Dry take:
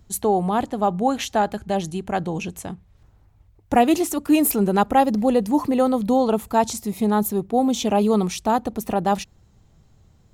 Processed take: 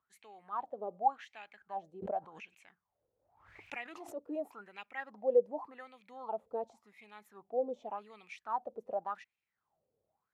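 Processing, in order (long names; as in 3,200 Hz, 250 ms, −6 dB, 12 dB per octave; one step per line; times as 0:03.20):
LFO wah 0.88 Hz 480–2,500 Hz, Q 9.2
0:02.02–0:04.15: background raised ahead of every attack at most 72 dB per second
level −4.5 dB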